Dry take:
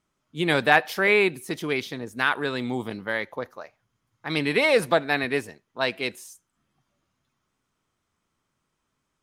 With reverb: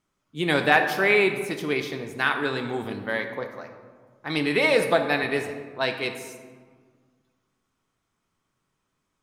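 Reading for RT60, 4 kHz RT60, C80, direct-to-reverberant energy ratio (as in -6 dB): 1.6 s, 0.90 s, 9.0 dB, 5.0 dB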